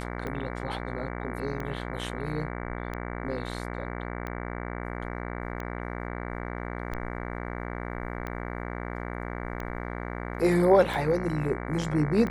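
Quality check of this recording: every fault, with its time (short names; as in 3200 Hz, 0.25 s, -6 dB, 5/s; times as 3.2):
buzz 60 Hz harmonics 38 -35 dBFS
tick 45 rpm -22 dBFS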